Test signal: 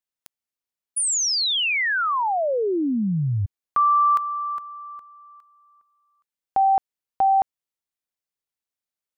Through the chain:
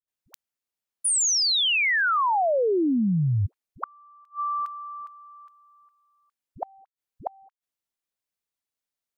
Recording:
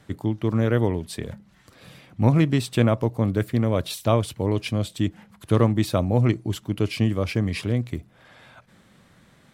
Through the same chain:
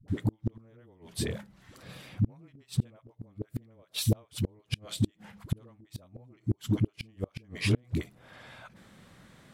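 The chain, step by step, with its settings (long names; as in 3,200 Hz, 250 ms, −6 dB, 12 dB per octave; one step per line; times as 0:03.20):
all-pass dispersion highs, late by 81 ms, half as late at 390 Hz
gate with flip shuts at −15 dBFS, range −35 dB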